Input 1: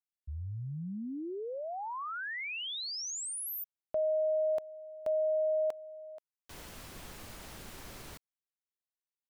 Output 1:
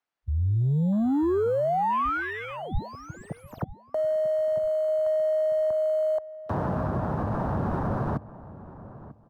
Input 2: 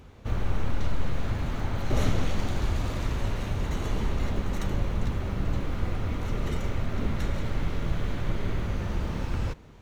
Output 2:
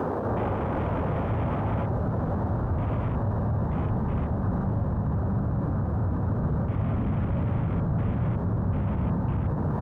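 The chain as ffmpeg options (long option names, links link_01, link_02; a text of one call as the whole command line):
ffmpeg -i in.wav -filter_complex "[0:a]asplit=2[link_01][link_02];[link_02]highpass=frequency=720:poles=1,volume=40dB,asoftclip=type=tanh:threshold=-11dB[link_03];[link_01][link_03]amix=inputs=2:normalize=0,lowpass=frequency=1500:poles=1,volume=-6dB,highpass=100,highshelf=frequency=6400:gain=-11,asplit=2[link_04][link_05];[link_05]acrusher=samples=12:mix=1:aa=0.000001,volume=-6.5dB[link_06];[link_04][link_06]amix=inputs=2:normalize=0,acrossover=split=270|1100[link_07][link_08][link_09];[link_07]acompressor=threshold=-23dB:ratio=4[link_10];[link_08]acompressor=threshold=-23dB:ratio=4[link_11];[link_09]acompressor=threshold=-41dB:ratio=4[link_12];[link_10][link_11][link_12]amix=inputs=3:normalize=0,afwtdn=0.0251,asubboost=boost=8.5:cutoff=130,areverse,acompressor=threshold=-22dB:ratio=6:attack=84:release=297,areverse,alimiter=limit=-19dB:level=0:latency=1:release=55,asplit=2[link_13][link_14];[link_14]adelay=944,lowpass=frequency=1300:poles=1,volume=-16dB,asplit=2[link_15][link_16];[link_16]adelay=944,lowpass=frequency=1300:poles=1,volume=0.26,asplit=2[link_17][link_18];[link_18]adelay=944,lowpass=frequency=1300:poles=1,volume=0.26[link_19];[link_13][link_15][link_17][link_19]amix=inputs=4:normalize=0" out.wav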